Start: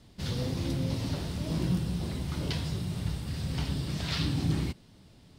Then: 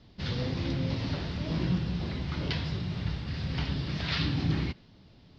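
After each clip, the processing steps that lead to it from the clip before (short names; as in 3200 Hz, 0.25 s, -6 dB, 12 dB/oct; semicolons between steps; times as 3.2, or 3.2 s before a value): steep low-pass 5300 Hz 36 dB/oct; dynamic EQ 1900 Hz, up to +5 dB, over -55 dBFS, Q 0.96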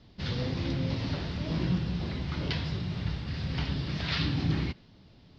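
nothing audible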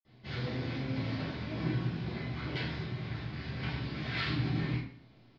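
in parallel at -10 dB: overloaded stage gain 26.5 dB; on the sum: doubler 30 ms -12 dB; reverb RT60 0.55 s, pre-delay 46 ms; gain -1.5 dB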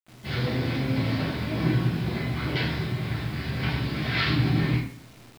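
requantised 10-bit, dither none; gain +9 dB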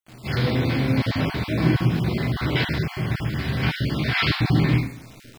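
random spectral dropouts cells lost 21%; gain +5 dB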